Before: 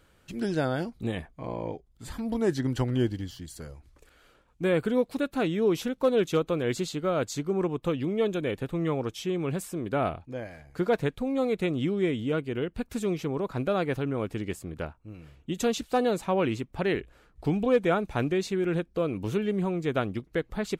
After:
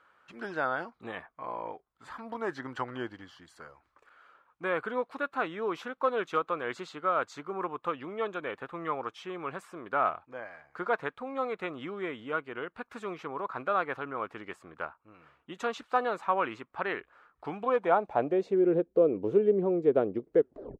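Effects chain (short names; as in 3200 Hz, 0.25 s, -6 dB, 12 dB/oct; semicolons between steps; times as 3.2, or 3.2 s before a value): tape stop at the end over 0.41 s; band-pass sweep 1200 Hz -> 450 Hz, 17.58–18.64; gain +7.5 dB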